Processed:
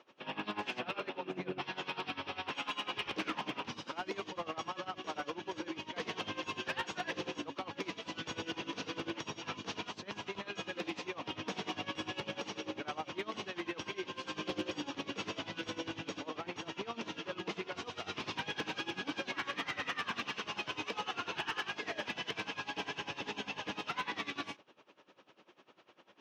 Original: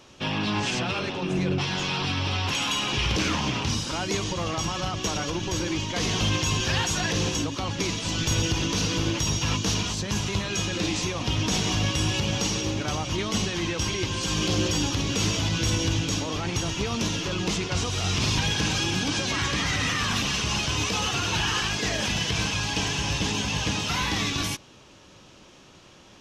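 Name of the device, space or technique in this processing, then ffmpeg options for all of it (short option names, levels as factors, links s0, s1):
helicopter radio: -af "highpass=330,lowpass=2600,aeval=exprs='val(0)*pow(10,-19*(0.5-0.5*cos(2*PI*10*n/s))/20)':c=same,asoftclip=type=hard:threshold=0.0596,volume=0.668"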